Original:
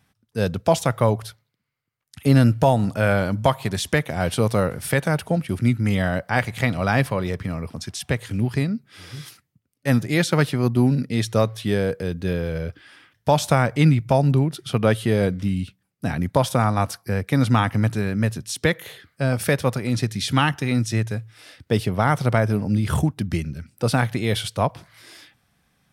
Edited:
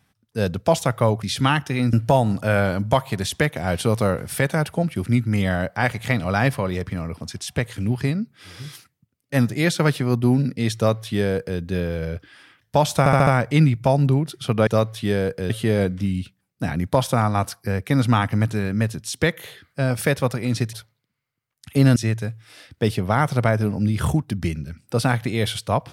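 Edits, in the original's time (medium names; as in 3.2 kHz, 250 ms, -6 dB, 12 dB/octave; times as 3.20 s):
1.23–2.46 s: swap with 20.15–20.85 s
11.29–12.12 s: copy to 14.92 s
13.52 s: stutter 0.07 s, 5 plays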